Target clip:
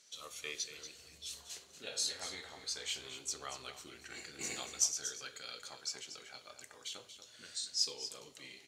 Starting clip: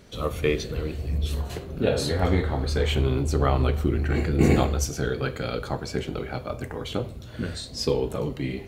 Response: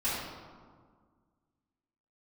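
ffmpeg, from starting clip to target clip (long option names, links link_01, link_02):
-af "bandpass=frequency=6500:width_type=q:width=1.9:csg=0,aecho=1:1:235:0.299,volume=2dB"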